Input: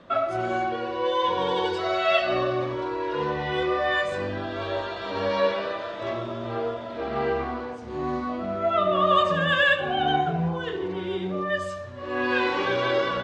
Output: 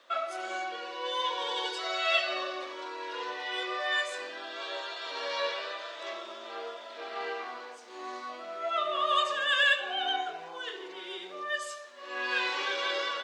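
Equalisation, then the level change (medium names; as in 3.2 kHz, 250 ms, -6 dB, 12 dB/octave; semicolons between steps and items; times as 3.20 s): high-pass 310 Hz 24 dB/octave; tilt EQ +4.5 dB/octave; -7.5 dB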